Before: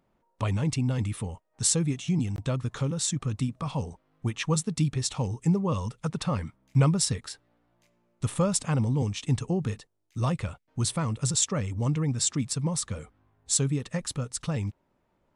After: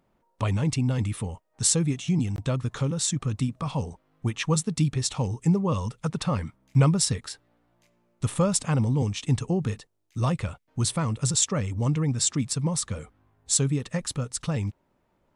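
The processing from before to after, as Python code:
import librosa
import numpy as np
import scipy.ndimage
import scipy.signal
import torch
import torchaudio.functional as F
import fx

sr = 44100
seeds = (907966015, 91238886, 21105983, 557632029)

y = x * librosa.db_to_amplitude(2.0)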